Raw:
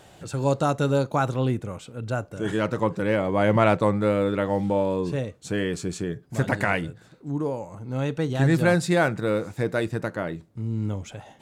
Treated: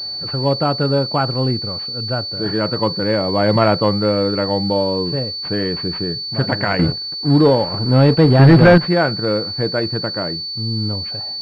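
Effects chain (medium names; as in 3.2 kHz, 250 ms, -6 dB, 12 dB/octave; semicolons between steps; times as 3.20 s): 6.79–8.78 s: waveshaping leveller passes 3; class-D stage that switches slowly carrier 4.5 kHz; trim +5 dB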